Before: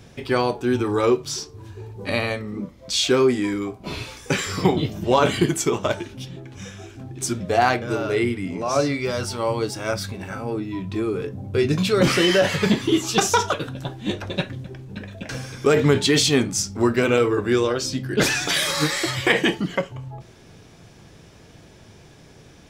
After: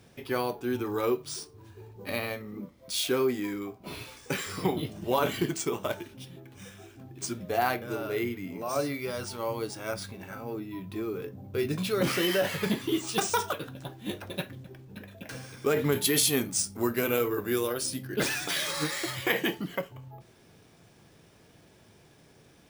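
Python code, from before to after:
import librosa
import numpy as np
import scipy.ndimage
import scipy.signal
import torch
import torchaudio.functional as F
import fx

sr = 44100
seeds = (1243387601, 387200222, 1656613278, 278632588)

y = fx.low_shelf(x, sr, hz=78.0, db=-10.0)
y = np.repeat(y[::3], 3)[:len(y)]
y = fx.peak_eq(y, sr, hz=12000.0, db=11.0, octaves=1.0, at=(15.92, 18.07))
y = y * 10.0 ** (-8.5 / 20.0)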